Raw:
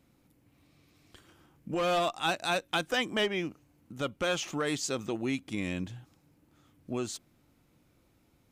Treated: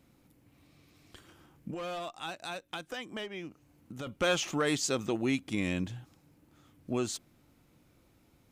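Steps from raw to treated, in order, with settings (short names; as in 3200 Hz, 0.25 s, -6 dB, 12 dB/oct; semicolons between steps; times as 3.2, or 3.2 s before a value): 1.7–4.07 compressor 3:1, threshold -43 dBFS, peak gain reduction 14 dB; gain +2 dB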